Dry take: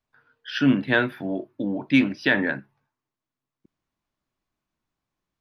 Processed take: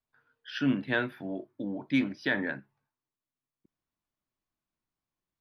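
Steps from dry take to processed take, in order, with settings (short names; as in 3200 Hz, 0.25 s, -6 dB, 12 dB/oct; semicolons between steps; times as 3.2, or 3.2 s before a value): 1.41–2.47 notch 2700 Hz, Q 7.5; gain -8 dB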